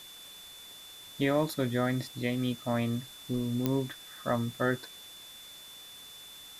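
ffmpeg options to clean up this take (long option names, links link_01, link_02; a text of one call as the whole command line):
ffmpeg -i in.wav -af "adeclick=threshold=4,bandreject=frequency=3500:width=30,afftdn=noise_reduction=28:noise_floor=-49" out.wav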